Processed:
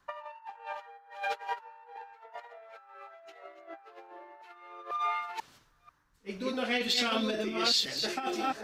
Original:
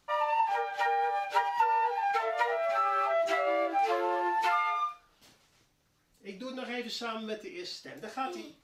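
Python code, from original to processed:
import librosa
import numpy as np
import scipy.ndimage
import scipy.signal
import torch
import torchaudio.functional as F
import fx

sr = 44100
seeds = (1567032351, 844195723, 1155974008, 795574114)

y = fx.reverse_delay(x, sr, ms=491, wet_db=-4)
y = fx.dynamic_eq(y, sr, hz=3400.0, q=1.0, threshold_db=-45.0, ratio=4.0, max_db=3)
y = fx.over_compress(y, sr, threshold_db=-35.0, ratio=-0.5)
y = fx.dmg_noise_band(y, sr, seeds[0], low_hz=890.0, high_hz=1800.0, level_db=-63.0)
y = fx.band_widen(y, sr, depth_pct=70)
y = F.gain(torch.from_numpy(y), -1.0).numpy()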